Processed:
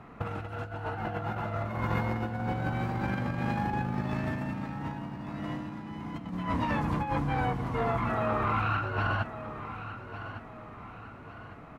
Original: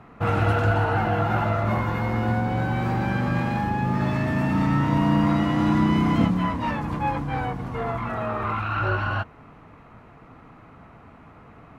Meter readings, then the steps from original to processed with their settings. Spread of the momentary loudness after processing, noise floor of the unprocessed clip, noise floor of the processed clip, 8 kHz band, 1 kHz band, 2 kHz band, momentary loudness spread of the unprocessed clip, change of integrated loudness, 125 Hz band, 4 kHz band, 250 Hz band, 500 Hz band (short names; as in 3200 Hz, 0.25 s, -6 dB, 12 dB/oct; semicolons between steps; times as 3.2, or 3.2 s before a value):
13 LU, -49 dBFS, -47 dBFS, n/a, -6.5 dB, -6.5 dB, 8 LU, -9.0 dB, -9.0 dB, -8.0 dB, -10.5 dB, -7.0 dB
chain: negative-ratio compressor -26 dBFS, ratio -0.5; feedback echo 1.155 s, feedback 41%, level -12 dB; gain -5 dB